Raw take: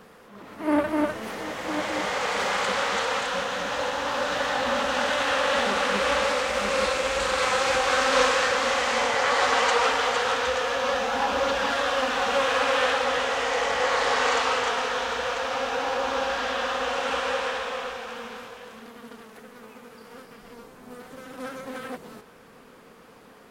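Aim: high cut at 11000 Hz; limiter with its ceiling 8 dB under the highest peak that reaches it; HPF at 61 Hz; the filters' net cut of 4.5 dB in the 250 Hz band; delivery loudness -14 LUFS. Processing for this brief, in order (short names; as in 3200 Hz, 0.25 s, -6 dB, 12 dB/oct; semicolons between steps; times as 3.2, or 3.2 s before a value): HPF 61 Hz; LPF 11000 Hz; bell 250 Hz -5.5 dB; gain +12 dB; limiter -4.5 dBFS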